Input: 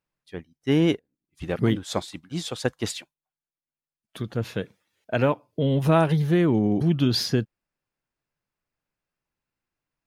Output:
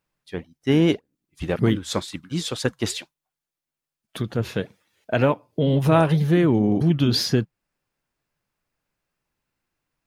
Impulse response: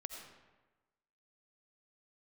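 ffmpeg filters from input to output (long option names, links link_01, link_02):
-filter_complex "[0:a]asettb=1/sr,asplit=3[link_01][link_02][link_03];[link_01]atrim=end=1.704[link_04];[link_02]atrim=start=1.7:end=2.81,asetpts=PTS-STARTPTS,afade=type=in:duration=0.004:curve=qsin,afade=type=out:start_time=1.106:duration=0.004:curve=qsin,equalizer=frequency=710:width=3.2:gain=-9[link_05];[link_03]atrim=start=2.806[link_06];[link_04][link_05]acrossfade=duration=0.004:curve1=hsin:curve2=qsin[link_07];[link_07][link_06]acrossfade=duration=0.004:curve1=qsin:curve2=hsin,asplit=2[link_08][link_09];[link_09]acompressor=threshold=-33dB:ratio=6,volume=-1.5dB[link_10];[link_08][link_10]amix=inputs=2:normalize=0,flanger=delay=0.1:depth=7:regen=-87:speed=1.9:shape=triangular,volume=5.5dB"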